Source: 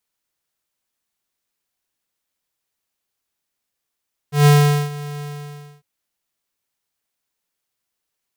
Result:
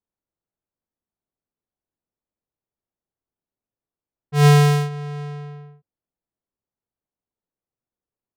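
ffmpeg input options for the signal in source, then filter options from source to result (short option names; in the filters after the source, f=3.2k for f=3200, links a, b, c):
-f lavfi -i "aevalsrc='0.335*(2*lt(mod(146*t,1),0.5)-1)':d=1.502:s=44100,afade=t=in:d=0.141,afade=t=out:st=0.141:d=0.434:silence=0.106,afade=t=out:st=0.89:d=0.612"
-af "adynamicsmooth=sensitivity=3:basefreq=760"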